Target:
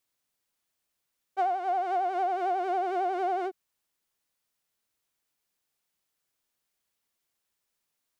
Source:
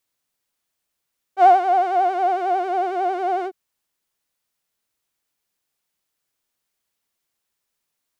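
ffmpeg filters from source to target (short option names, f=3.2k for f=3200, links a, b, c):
-af "acompressor=threshold=-22dB:ratio=16,volume=-3dB"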